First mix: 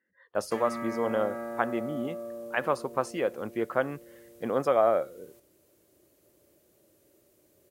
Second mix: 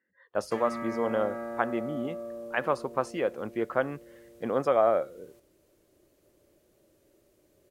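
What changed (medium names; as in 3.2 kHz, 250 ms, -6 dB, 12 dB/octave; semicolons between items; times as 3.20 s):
background: remove high-pass 64 Hz; master: add treble shelf 8.8 kHz -9.5 dB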